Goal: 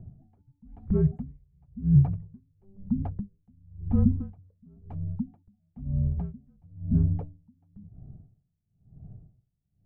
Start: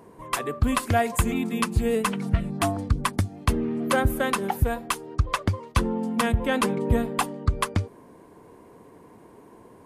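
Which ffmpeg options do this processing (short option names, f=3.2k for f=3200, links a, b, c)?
-af "lowpass=f=420:t=q:w=4.9,afreqshift=-300,aeval=exprs='val(0)*pow(10,-38*(0.5-0.5*cos(2*PI*0.99*n/s))/20)':c=same,volume=-1.5dB"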